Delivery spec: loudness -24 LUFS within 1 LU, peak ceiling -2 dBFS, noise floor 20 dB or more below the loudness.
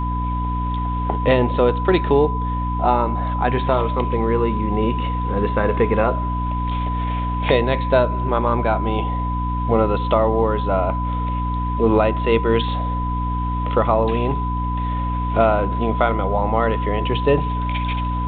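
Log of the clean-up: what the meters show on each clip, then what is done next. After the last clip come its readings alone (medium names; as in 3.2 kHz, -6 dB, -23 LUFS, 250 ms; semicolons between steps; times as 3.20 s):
hum 60 Hz; highest harmonic 300 Hz; hum level -21 dBFS; steady tone 1 kHz; tone level -25 dBFS; loudness -20.0 LUFS; peak level -3.0 dBFS; loudness target -24.0 LUFS
-> de-hum 60 Hz, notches 5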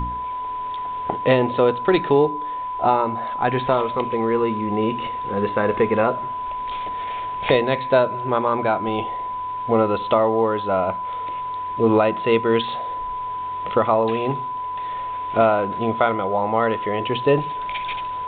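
hum not found; steady tone 1 kHz; tone level -25 dBFS
-> band-stop 1 kHz, Q 30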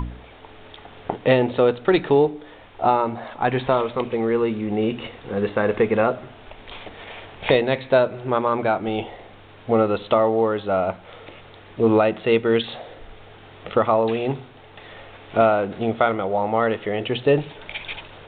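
steady tone not found; loudness -21.5 LUFS; peak level -4.0 dBFS; loudness target -24.0 LUFS
-> trim -2.5 dB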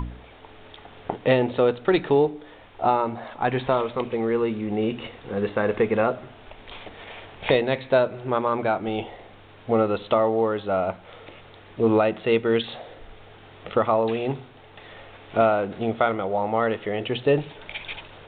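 loudness -24.0 LUFS; peak level -6.5 dBFS; noise floor -48 dBFS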